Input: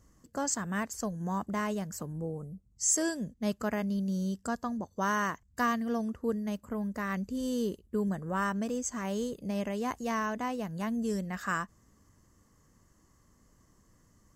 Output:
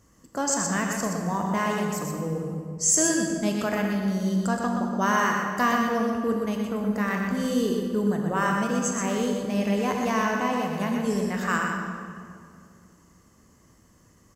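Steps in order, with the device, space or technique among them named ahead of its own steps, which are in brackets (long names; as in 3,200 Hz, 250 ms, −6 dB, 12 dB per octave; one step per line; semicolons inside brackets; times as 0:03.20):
PA in a hall (high-pass filter 100 Hz 6 dB per octave; parametric band 2,600 Hz +3.5 dB 0.59 octaves; single-tap delay 123 ms −5 dB; convolution reverb RT60 2.3 s, pre-delay 20 ms, DRR 3 dB)
level +5 dB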